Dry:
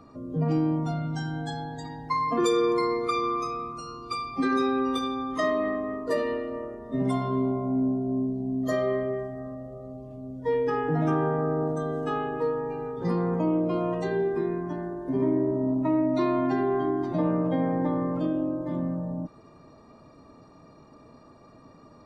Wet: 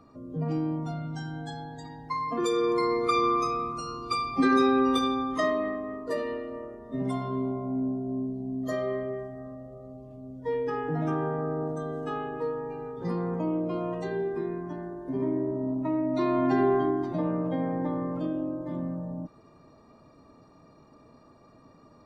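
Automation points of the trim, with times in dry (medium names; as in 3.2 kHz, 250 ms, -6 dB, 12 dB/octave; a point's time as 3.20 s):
2.40 s -4.5 dB
3.21 s +3 dB
5.11 s +3 dB
5.78 s -4 dB
16.02 s -4 dB
16.65 s +3 dB
17.21 s -3.5 dB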